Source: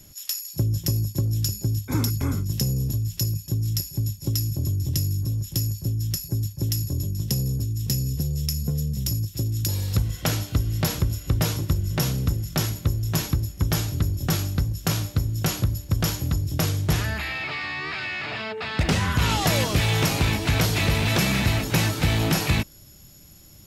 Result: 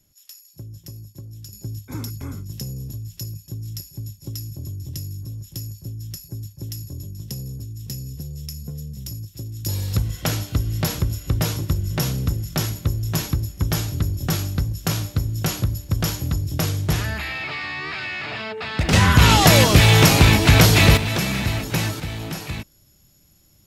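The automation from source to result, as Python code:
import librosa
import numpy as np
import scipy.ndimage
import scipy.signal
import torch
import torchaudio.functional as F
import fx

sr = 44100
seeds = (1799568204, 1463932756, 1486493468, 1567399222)

y = fx.gain(x, sr, db=fx.steps((0.0, -14.5), (1.53, -7.0), (9.66, 1.0), (18.93, 9.0), (20.97, -1.0), (22.0, -8.0)))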